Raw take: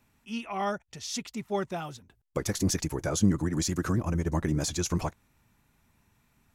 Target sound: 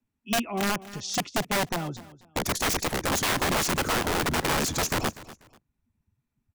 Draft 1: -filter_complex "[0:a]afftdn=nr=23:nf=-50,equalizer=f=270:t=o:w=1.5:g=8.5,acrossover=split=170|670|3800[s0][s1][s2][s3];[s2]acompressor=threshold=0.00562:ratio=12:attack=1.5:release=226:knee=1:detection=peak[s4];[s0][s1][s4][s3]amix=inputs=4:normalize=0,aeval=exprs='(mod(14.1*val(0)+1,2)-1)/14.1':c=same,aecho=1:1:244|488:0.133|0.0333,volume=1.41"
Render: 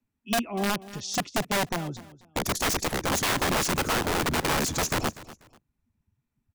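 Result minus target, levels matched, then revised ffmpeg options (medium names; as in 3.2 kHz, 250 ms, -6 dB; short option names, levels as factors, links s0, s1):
compression: peak gain reduction +6 dB
-filter_complex "[0:a]afftdn=nr=23:nf=-50,equalizer=f=270:t=o:w=1.5:g=8.5,acrossover=split=170|670|3800[s0][s1][s2][s3];[s2]acompressor=threshold=0.0119:ratio=12:attack=1.5:release=226:knee=1:detection=peak[s4];[s0][s1][s4][s3]amix=inputs=4:normalize=0,aeval=exprs='(mod(14.1*val(0)+1,2)-1)/14.1':c=same,aecho=1:1:244|488:0.133|0.0333,volume=1.41"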